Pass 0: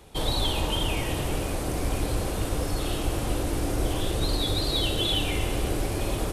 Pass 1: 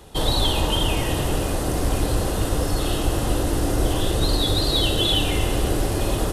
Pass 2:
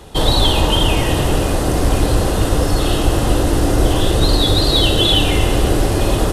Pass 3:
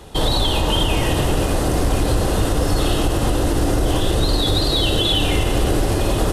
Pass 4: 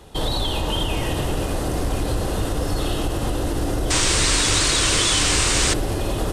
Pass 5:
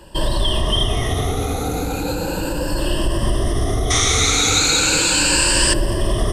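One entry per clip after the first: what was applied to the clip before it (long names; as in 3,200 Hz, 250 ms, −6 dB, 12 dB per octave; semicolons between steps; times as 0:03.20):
notch filter 2,300 Hz, Q 7.1; level +5.5 dB
high-shelf EQ 9,400 Hz −6 dB; level +7 dB
boost into a limiter +6 dB; level −7.5 dB
sound drawn into the spectrogram noise, 0:03.90–0:05.74, 900–9,400 Hz −16 dBFS; level −5 dB
rippled gain that drifts along the octave scale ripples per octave 1.3, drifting +0.36 Hz, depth 16 dB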